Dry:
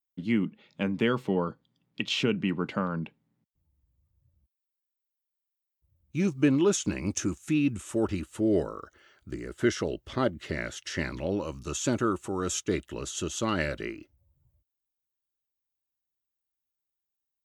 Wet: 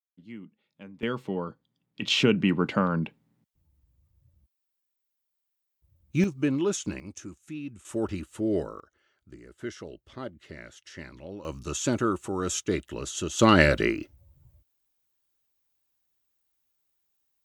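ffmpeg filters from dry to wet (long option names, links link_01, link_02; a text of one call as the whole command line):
ffmpeg -i in.wav -af "asetnsamples=nb_out_samples=441:pad=0,asendcmd='1.03 volume volume -4dB;2.02 volume volume 5dB;6.24 volume volume -3dB;7 volume volume -12dB;7.85 volume volume -2dB;8.8 volume volume -11dB;11.45 volume volume 1dB;13.39 volume volume 10.5dB',volume=-16.5dB" out.wav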